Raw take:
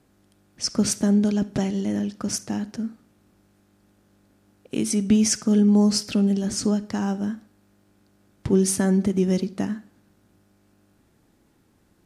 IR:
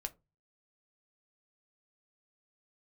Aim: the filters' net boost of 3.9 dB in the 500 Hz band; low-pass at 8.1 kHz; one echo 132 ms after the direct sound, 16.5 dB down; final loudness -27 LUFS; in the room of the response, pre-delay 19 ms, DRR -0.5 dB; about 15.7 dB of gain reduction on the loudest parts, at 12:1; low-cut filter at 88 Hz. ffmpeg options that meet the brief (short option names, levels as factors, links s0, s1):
-filter_complex "[0:a]highpass=88,lowpass=8100,equalizer=f=500:t=o:g=5.5,acompressor=threshold=0.0355:ratio=12,aecho=1:1:132:0.15,asplit=2[s0][s1];[1:a]atrim=start_sample=2205,adelay=19[s2];[s1][s2]afir=irnorm=-1:irlink=0,volume=1.33[s3];[s0][s3]amix=inputs=2:normalize=0,volume=1.5"